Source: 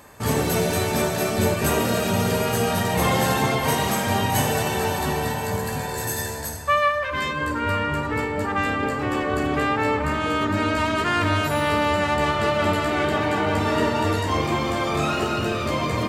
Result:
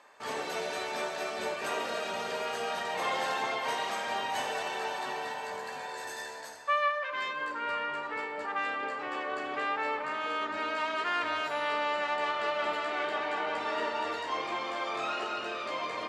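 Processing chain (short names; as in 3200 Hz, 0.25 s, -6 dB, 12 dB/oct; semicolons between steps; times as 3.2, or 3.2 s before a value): BPF 570–4800 Hz; gain -7.5 dB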